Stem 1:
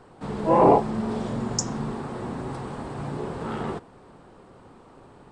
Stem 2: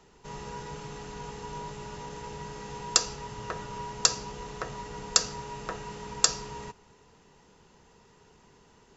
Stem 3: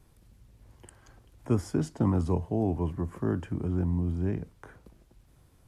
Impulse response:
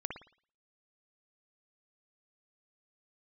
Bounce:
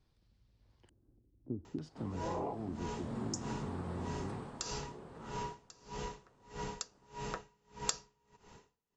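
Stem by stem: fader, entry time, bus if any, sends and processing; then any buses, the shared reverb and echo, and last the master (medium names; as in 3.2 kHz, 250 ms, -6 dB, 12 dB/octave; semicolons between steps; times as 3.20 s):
2.89 s -16.5 dB -> 3.20 s -8.5 dB -> 4.33 s -8.5 dB -> 4.69 s -19 dB, 1.75 s, no send, none
+2.0 dB, 1.65 s, no send, logarithmic tremolo 1.6 Hz, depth 37 dB
-13.5 dB, 0.00 s, no send, LFO low-pass square 0.56 Hz 310–4600 Hz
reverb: none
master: compression 3:1, threshold -36 dBFS, peak gain reduction 16.5 dB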